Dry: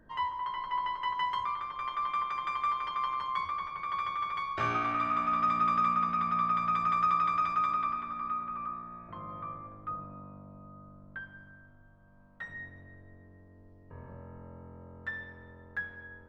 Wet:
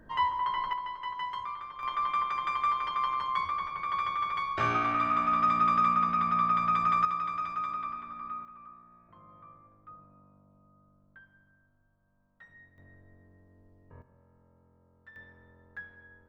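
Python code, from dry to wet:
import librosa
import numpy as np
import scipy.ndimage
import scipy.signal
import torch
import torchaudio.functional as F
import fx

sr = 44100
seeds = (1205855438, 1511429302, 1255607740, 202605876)

y = fx.gain(x, sr, db=fx.steps((0.0, 5.0), (0.73, -4.0), (1.83, 2.5), (7.05, -4.5), (8.45, -12.5), (12.78, -4.0), (14.02, -16.0), (15.16, -7.0)))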